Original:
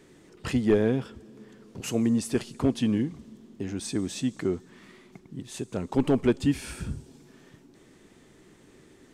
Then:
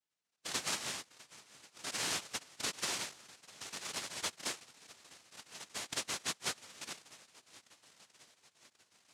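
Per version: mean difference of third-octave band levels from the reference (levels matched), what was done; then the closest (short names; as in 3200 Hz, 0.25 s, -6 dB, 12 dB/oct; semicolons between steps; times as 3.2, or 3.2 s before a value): 13.5 dB: per-bin expansion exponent 2; compressor 6:1, threshold -36 dBFS, peak gain reduction 16 dB; swung echo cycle 1.086 s, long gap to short 1.5:1, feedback 55%, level -20 dB; noise vocoder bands 1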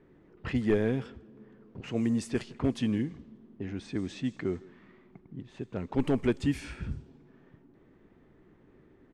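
3.0 dB: low shelf 100 Hz +6 dB; speakerphone echo 0.16 s, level -20 dB; low-pass opened by the level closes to 1600 Hz, open at -18.5 dBFS; dynamic EQ 2000 Hz, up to +5 dB, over -54 dBFS, Q 1.9; gain -5 dB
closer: second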